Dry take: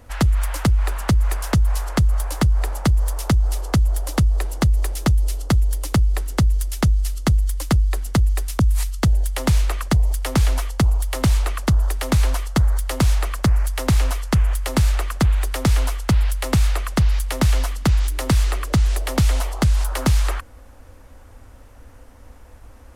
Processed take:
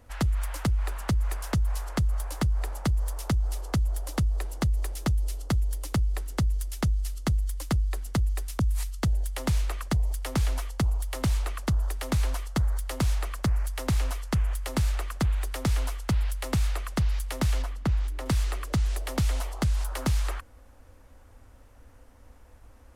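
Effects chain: 17.62–18.26 high shelf 3200 Hz -11 dB; gain -8.5 dB

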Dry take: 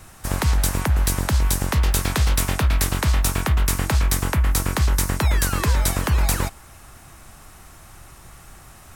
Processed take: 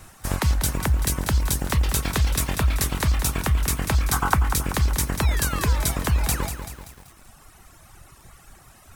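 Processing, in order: spectral gain 4.13–4.35, 700–1600 Hz +11 dB; reverb removal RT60 1.6 s; lo-fi delay 0.192 s, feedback 55%, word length 7-bit, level -8.5 dB; gain -1 dB

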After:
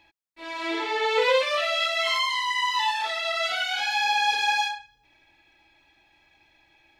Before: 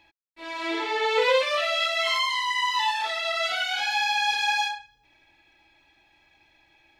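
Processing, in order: 4.03–4.6 bell 420 Hz +13.5 dB -> +6.5 dB 1.1 oct

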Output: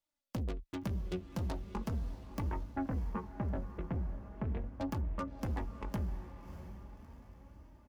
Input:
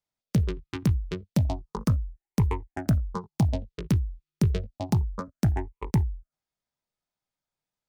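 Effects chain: tracing distortion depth 0.058 ms; comb 3.5 ms, depth 58%; soft clip -29.5 dBFS, distortion -7 dB; 2.42–4.75 LPF 2200 Hz 24 dB/oct; diffused feedback echo 0.636 s, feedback 52%, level -11 dB; flange 0.39 Hz, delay 3.1 ms, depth 2.8 ms, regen +62%; gain +1.5 dB

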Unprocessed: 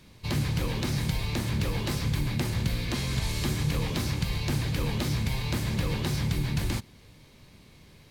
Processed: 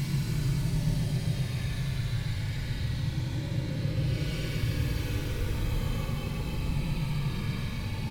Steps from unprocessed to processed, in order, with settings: three bands offset in time mids, lows, highs 40/70 ms, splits 300/930 Hz; vibrato 2.7 Hz 16 cents; shoebox room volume 1000 m³, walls furnished, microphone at 2.4 m; Paulstretch 22×, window 0.05 s, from 4.62; on a send: darkening echo 0.136 s, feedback 81%, low-pass 3600 Hz, level -8.5 dB; on the sum: gain -8 dB

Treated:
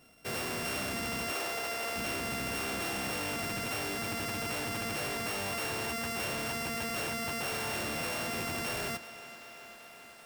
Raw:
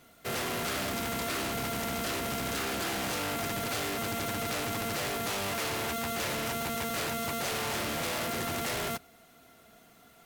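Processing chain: sample sorter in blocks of 16 samples; 1.32–1.96 resonant low shelf 310 Hz -13 dB, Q 1.5; thinning echo 0.386 s, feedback 82%, high-pass 220 Hz, level -16 dB; gain -2.5 dB

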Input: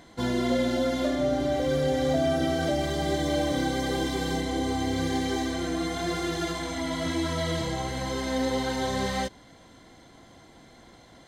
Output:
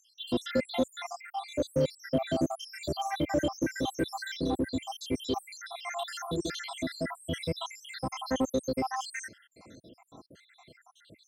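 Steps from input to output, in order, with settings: random spectral dropouts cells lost 81%; HPF 89 Hz 12 dB/oct; in parallel at -8 dB: hard clip -30.5 dBFS, distortion -7 dB

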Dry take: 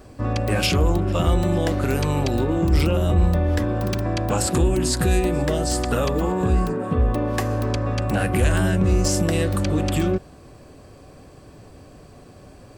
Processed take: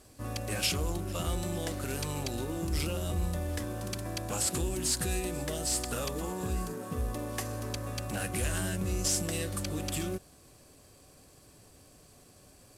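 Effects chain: CVSD 64 kbps; pre-emphasis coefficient 0.8

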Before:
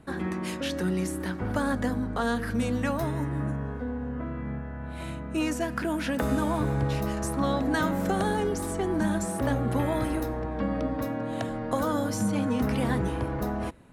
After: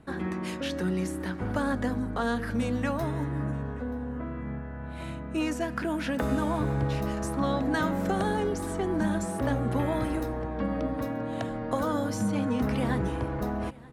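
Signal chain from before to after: high shelf 7700 Hz -6.5 dB; echo 0.93 s -22 dB; gain -1 dB

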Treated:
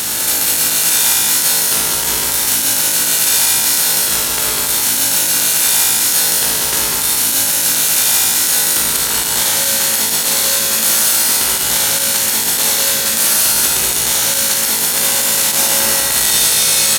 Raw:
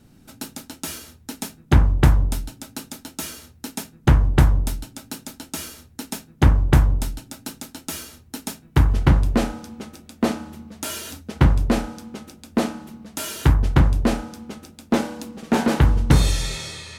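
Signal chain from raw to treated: per-bin compression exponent 0.2; soft clip -8 dBFS, distortion -13 dB; differentiator; resonator 55 Hz, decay 1.8 s, harmonics all, mix 90%; on a send: echo 0.198 s -4 dB; on the sum: maximiser +29.5 dB; gain -1 dB

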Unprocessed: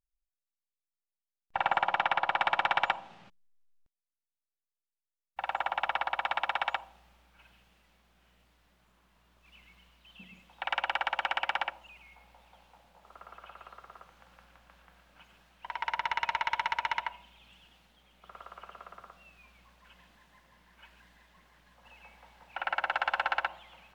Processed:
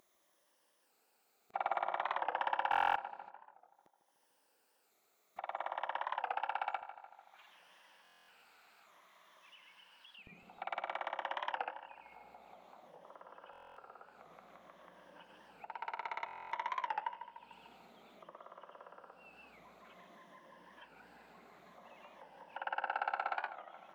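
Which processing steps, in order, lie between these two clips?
moving spectral ripple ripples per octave 1.2, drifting -0.55 Hz, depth 8 dB; HPF 520 Hz 12 dB/oct, from 6.82 s 1300 Hz, from 10.28 s 370 Hz; tilt shelf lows +9.5 dB; upward compressor, threshold -40 dBFS; darkening echo 0.148 s, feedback 61%, low-pass 2400 Hz, level -11 dB; stuck buffer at 2.7/8.03/13.51/16.26, samples 1024, times 10; record warp 45 rpm, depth 160 cents; gain -7.5 dB

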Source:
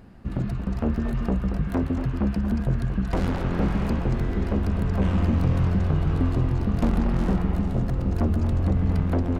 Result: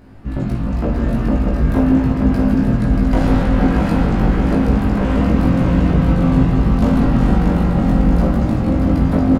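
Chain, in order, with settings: doubler 19 ms -3 dB; feedback echo 0.633 s, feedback 51%, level -4.5 dB; reverb RT60 1.7 s, pre-delay 3 ms, DRR -1 dB; gain +2.5 dB

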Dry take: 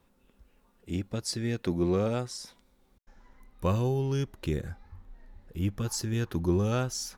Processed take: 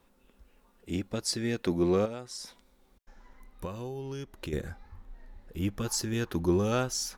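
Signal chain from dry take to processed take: bell 110 Hz -7 dB 1.4 oct; 2.05–4.53 compressor 6:1, threshold -38 dBFS, peak gain reduction 13.5 dB; gain +2.5 dB

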